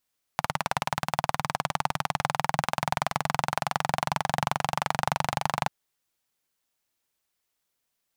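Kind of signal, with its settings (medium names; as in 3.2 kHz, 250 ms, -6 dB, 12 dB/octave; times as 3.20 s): single-cylinder engine model, changing speed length 5.29 s, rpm 2200, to 2900, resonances 150/820 Hz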